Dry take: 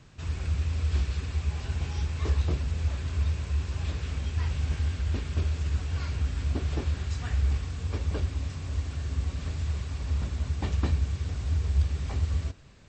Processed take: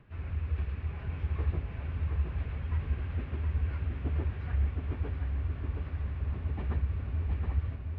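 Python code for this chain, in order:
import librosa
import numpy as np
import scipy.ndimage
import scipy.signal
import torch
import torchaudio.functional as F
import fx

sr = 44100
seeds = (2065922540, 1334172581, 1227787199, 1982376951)

y = scipy.signal.sosfilt(scipy.signal.butter(4, 2500.0, 'lowpass', fs=sr, output='sos'), x)
y = fx.stretch_vocoder_free(y, sr, factor=0.62)
y = fx.echo_feedback(y, sr, ms=720, feedback_pct=55, wet_db=-5.0)
y = y * 10.0 ** (-2.0 / 20.0)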